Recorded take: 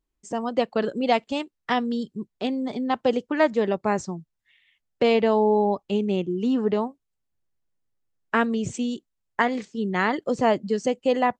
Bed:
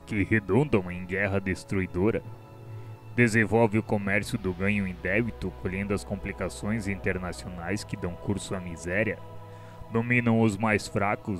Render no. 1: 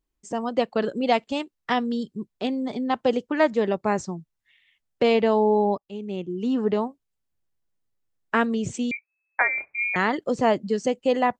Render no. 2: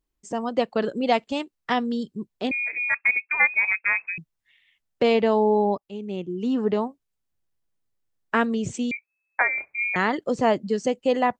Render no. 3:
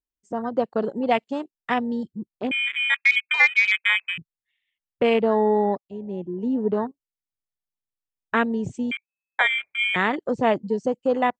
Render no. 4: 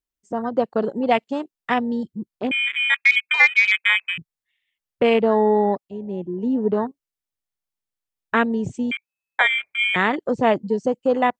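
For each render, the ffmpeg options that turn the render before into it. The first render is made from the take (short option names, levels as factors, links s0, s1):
-filter_complex "[0:a]asettb=1/sr,asplit=3[s0][s1][s2];[s0]atrim=end=8.914[s3];[s1]atrim=start=8.91:end=9.96,asetpts=PTS-STARTPTS,afade=t=in:d=0.004:c=qsin,afade=t=out:st=1.046:d=0.004:c=qsin,lowpass=f=2200:t=q:w=0.5098,lowpass=f=2200:t=q:w=0.6013,lowpass=f=2200:t=q:w=0.9,lowpass=f=2200:t=q:w=2.563,afreqshift=-2600[s4];[s2]atrim=start=9.956[s5];[s3][s4]acrossfade=d=0.004:c1=hsin:c2=qsin[s6];[s6][s5]acrossfade=d=0.004:c1=qsin:c2=hsin,asplit=2[s7][s8];[s7]atrim=end=5.78,asetpts=PTS-STARTPTS,afade=t=out:st=5.776:d=0.004:c=hsin:silence=0.1[s9];[s8]atrim=start=5.78,asetpts=PTS-STARTPTS,afade=t=in:d=0.87:silence=0.1[s10];[s9][s10]concat=n=2:v=0:a=1"
-filter_complex "[0:a]asettb=1/sr,asplit=3[s0][s1][s2];[s0]atrim=end=2.514[s3];[s1]atrim=start=2.51:end=4.18,asetpts=PTS-STARTPTS,afade=t=in:d=0.004:c=qsin,afade=t=out:st=1.666:d=0.004:c=qsin,lowpass=f=2300:t=q:w=0.5098,lowpass=f=2300:t=q:w=0.6013,lowpass=f=2300:t=q:w=0.9,lowpass=f=2300:t=q:w=2.563,afreqshift=-2700[s4];[s2]atrim=start=4.176[s5];[s3][s4]acrossfade=d=0.004:c1=hsin:c2=qsin[s6];[s6][s5]acrossfade=d=0.004:c1=qsin:c2=hsin"
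-af "afwtdn=0.0316,adynamicequalizer=threshold=0.0178:dfrequency=2200:dqfactor=0.7:tfrequency=2200:tqfactor=0.7:attack=5:release=100:ratio=0.375:range=3:mode=boostabove:tftype=highshelf"
-af "volume=1.33"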